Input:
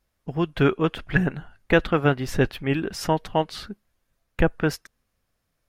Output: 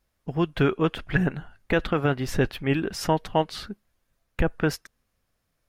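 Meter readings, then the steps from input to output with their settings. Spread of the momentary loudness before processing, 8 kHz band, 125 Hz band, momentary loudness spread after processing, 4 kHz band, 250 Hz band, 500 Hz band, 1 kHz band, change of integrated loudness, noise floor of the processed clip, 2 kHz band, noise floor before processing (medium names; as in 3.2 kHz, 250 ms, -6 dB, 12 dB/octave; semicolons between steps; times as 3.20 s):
17 LU, 0.0 dB, -1.5 dB, 15 LU, -1.0 dB, -1.5 dB, -2.0 dB, -1.5 dB, -2.0 dB, -76 dBFS, -3.0 dB, -76 dBFS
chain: peak limiter -10.5 dBFS, peak gain reduction 6 dB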